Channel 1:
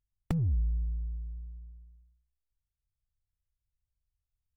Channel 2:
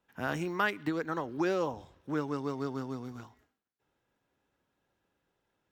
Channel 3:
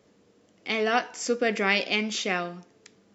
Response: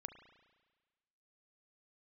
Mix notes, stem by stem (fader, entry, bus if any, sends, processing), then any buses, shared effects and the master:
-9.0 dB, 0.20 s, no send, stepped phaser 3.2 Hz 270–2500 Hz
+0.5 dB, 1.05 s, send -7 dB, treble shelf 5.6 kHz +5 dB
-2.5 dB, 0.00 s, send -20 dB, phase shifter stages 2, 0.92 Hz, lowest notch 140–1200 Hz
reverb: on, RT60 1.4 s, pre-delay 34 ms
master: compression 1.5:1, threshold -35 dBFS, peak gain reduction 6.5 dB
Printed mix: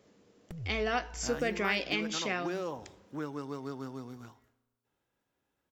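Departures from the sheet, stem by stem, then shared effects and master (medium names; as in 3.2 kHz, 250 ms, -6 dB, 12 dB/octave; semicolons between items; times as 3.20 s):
stem 2 +0.5 dB -> -5.5 dB; stem 3: missing phase shifter stages 2, 0.92 Hz, lowest notch 140–1200 Hz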